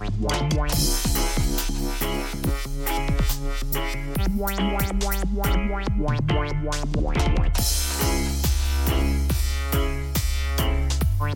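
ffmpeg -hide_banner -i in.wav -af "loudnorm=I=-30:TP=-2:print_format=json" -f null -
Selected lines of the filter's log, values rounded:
"input_i" : "-24.5",
"input_tp" : "-11.0",
"input_lra" : "2.4",
"input_thresh" : "-34.5",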